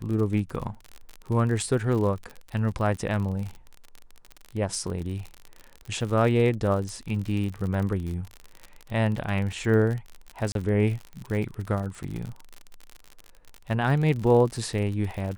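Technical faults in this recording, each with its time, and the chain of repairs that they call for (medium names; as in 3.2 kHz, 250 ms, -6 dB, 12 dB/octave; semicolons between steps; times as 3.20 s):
crackle 47 per s -31 dBFS
10.52–10.55 s: dropout 32 ms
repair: de-click; interpolate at 10.52 s, 32 ms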